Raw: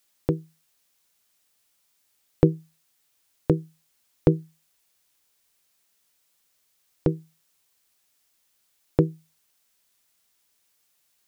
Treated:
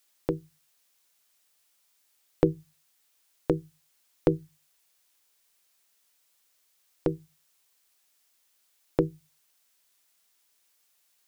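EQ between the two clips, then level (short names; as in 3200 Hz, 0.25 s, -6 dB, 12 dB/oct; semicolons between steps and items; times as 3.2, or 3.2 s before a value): bell 85 Hz -10 dB 2.9 oct; notches 50/100/150 Hz; 0.0 dB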